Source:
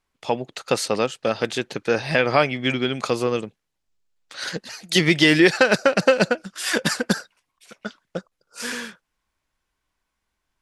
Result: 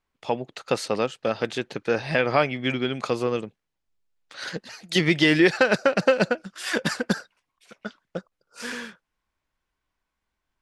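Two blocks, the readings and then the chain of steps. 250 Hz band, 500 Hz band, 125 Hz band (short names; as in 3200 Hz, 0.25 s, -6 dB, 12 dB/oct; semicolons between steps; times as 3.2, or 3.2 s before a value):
-2.5 dB, -2.5 dB, -2.5 dB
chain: high shelf 5600 Hz -8.5 dB; gain -2.5 dB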